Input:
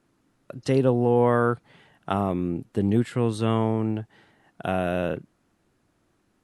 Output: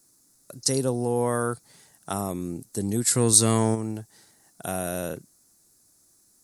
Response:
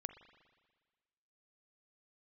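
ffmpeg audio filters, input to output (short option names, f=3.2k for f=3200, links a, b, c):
-filter_complex "[0:a]asplit=3[a][b][c];[a]afade=t=out:st=3.06:d=0.02[d];[b]acontrast=81,afade=t=in:st=3.06:d=0.02,afade=t=out:st=3.74:d=0.02[e];[c]afade=t=in:st=3.74:d=0.02[f];[d][e][f]amix=inputs=3:normalize=0,aexciter=amount=14.5:drive=6.6:freq=4.6k,volume=-5dB"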